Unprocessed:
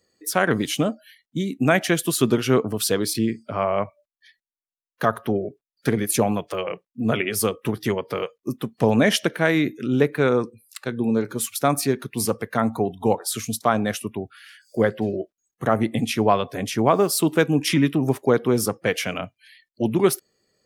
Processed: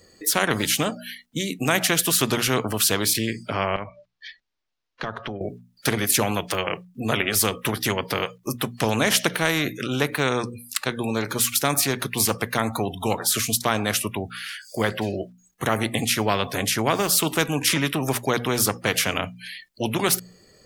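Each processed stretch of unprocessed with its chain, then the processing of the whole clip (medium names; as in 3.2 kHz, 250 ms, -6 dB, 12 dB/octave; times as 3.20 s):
3.76–5.41 s: low-pass 5.4 kHz 24 dB/octave + compression 2:1, threshold -45 dBFS
whole clip: bass shelf 89 Hz +11 dB; hum notches 60/120/180/240 Hz; spectrum-flattening compressor 2:1; trim -1.5 dB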